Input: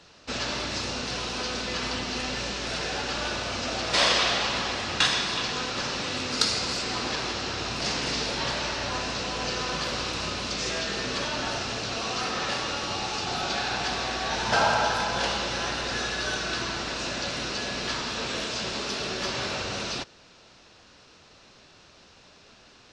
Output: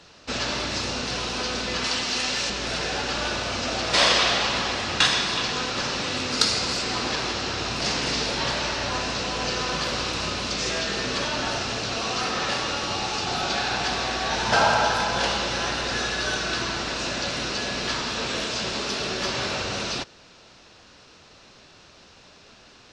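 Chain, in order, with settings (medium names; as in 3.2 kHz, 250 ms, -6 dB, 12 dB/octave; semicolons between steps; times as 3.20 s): 1.84–2.50 s: tilt EQ +2 dB/octave; trim +3 dB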